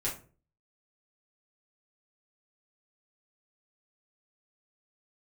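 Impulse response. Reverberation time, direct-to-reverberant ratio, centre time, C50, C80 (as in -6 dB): 0.40 s, -7.0 dB, 25 ms, 9.0 dB, 15.5 dB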